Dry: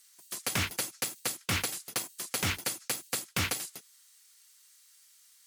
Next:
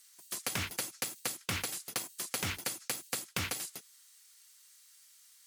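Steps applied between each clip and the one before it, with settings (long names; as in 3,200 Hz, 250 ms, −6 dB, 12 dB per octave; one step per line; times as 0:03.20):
downward compressor, threshold −31 dBFS, peak gain reduction 6 dB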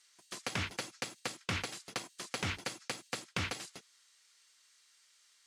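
high-frequency loss of the air 86 metres
level +1 dB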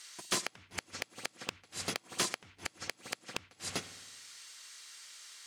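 spring reverb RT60 1.1 s, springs 53 ms, chirp 30 ms, DRR 17.5 dB
gate with flip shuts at −27 dBFS, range −38 dB
soft clipping −36.5 dBFS, distortion −7 dB
level +15 dB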